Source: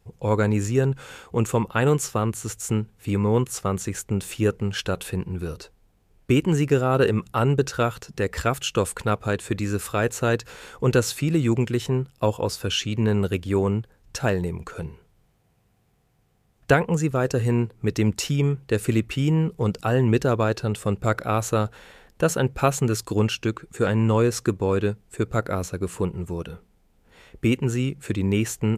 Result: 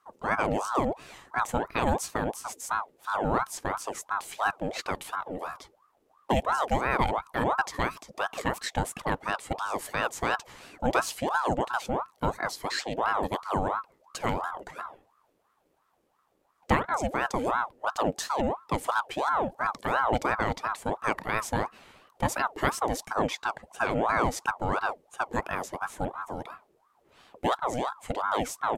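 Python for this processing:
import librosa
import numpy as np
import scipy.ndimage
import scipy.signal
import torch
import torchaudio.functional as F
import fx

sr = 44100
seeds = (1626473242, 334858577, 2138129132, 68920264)

y = fx.ring_lfo(x, sr, carrier_hz=790.0, swing_pct=55, hz=2.9)
y = y * 10.0 ** (-3.5 / 20.0)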